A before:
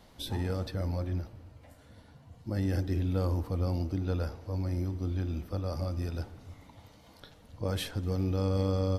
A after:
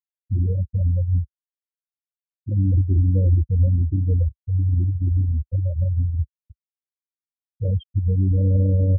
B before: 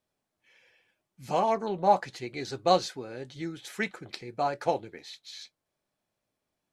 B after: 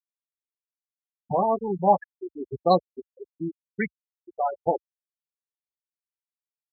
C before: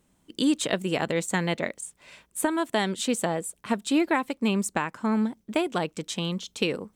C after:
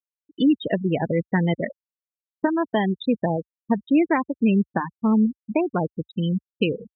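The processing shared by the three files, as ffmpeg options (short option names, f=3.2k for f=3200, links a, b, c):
-af "lowpass=f=5.3k:w=0.5412,lowpass=f=5.3k:w=1.3066,afftfilt=real='re*gte(hypot(re,im),0.112)':imag='im*gte(hypot(re,im),0.112)':win_size=1024:overlap=0.75,equalizer=f=64:w=0.53:g=13.5,volume=2.5dB"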